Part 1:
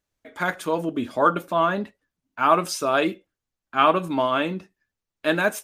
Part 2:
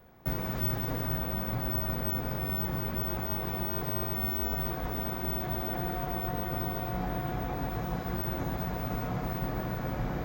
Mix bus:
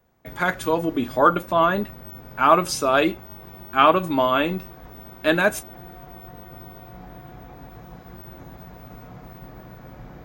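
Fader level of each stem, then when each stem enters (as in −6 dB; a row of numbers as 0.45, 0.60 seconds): +2.5, −8.5 decibels; 0.00, 0.00 seconds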